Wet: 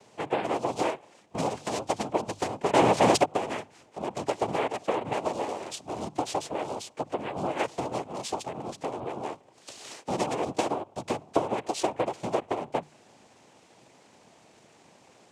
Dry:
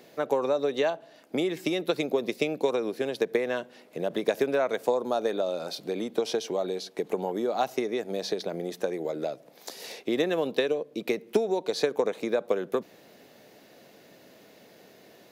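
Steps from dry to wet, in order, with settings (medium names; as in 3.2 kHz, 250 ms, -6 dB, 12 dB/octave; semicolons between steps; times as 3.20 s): 2.73–3.23 s: waveshaping leveller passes 5; noise-vocoded speech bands 4; hum notches 50/100/150 Hz; trim -2.5 dB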